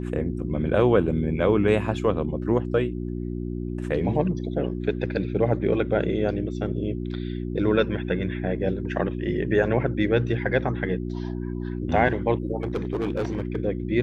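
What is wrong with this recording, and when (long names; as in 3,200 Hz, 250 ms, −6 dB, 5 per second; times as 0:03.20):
mains hum 60 Hz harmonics 6 −30 dBFS
0:12.62–0:13.57: clipping −21.5 dBFS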